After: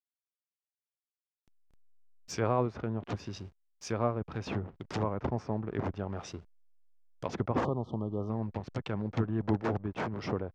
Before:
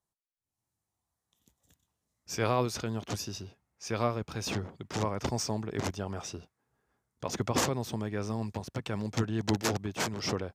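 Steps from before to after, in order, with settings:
slack as between gear wheels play −43.5 dBFS
treble cut that deepens with the level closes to 1,400 Hz, closed at −29.5 dBFS
time-frequency box erased 0:07.65–0:08.29, 1,300–2,900 Hz

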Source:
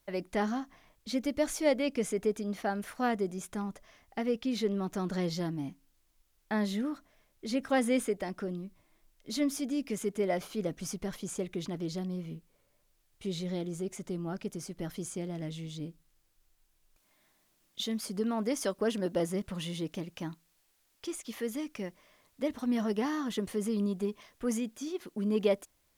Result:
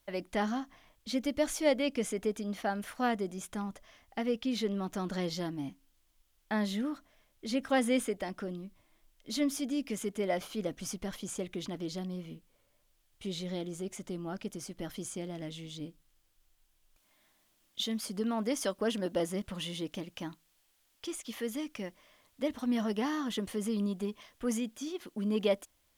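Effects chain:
thirty-one-band graphic EQ 160 Hz −6 dB, 400 Hz −4 dB, 3,150 Hz +4 dB

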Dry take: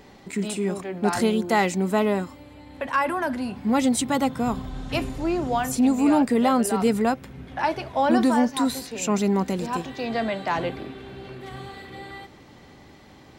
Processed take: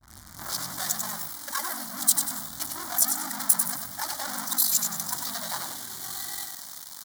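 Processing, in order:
turntable start at the beginning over 1.76 s
octave-band graphic EQ 1,000/2,000/8,000 Hz −10/−6/−9 dB
leveller curve on the samples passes 5
ring modulation 24 Hz
in parallel at −10.5 dB: fuzz pedal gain 40 dB, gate −48 dBFS
on the sum: phaser with its sweep stopped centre 1,100 Hz, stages 4
tempo change 1.9×
first difference
on a send: echo with shifted repeats 96 ms, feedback 37%, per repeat −35 Hz, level −6 dB
on the sum: level +3 dB

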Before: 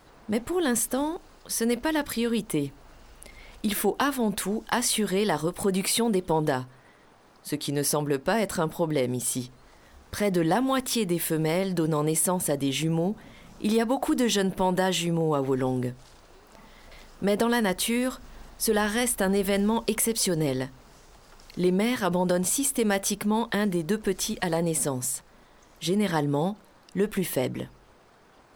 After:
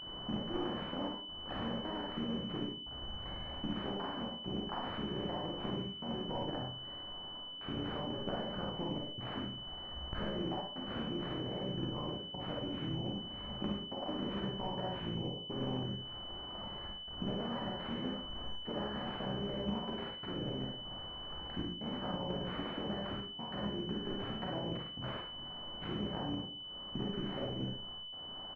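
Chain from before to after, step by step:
sub-harmonics by changed cycles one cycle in 3, muted
parametric band 470 Hz −10 dB 0.28 octaves
downward compressor 16 to 1, threshold −41 dBFS, peak gain reduction 21 dB
pitch-shifted copies added −4 semitones −6 dB
gate pattern "xxxxxxxxxxx..xxx" 152 BPM −24 dB
on a send: ambience of single reflections 55 ms −5 dB, 72 ms −9 dB
on the sum: four-comb reverb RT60 0.42 s, combs from 31 ms, DRR −0.5 dB
switching amplifier with a slow clock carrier 3,000 Hz
level +2.5 dB

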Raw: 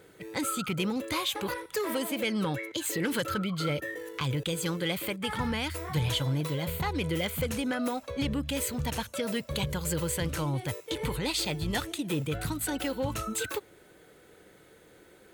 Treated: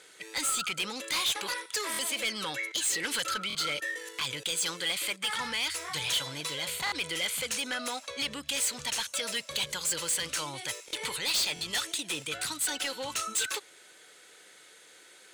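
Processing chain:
meter weighting curve ITU-R 468
soft clipping −24.5 dBFS, distortion −8 dB
buffer that repeats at 0:01.92/0:03.48/0:06.85/0:10.86/0:11.54, samples 1,024, times 2

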